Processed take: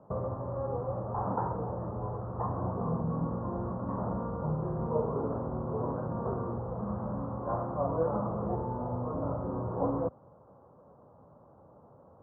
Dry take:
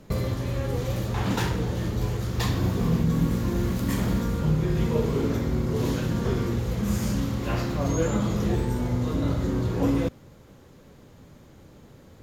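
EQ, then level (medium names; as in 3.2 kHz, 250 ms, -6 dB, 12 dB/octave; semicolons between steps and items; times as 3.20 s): high-pass 89 Hz 12 dB/octave; steep low-pass 1.2 kHz 48 dB/octave; resonant low shelf 460 Hz -8 dB, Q 1.5; 0.0 dB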